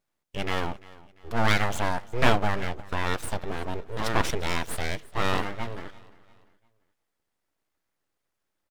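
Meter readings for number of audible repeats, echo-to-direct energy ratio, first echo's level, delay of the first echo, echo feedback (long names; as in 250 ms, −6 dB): 2, −20.5 dB, −21.0 dB, 345 ms, 40%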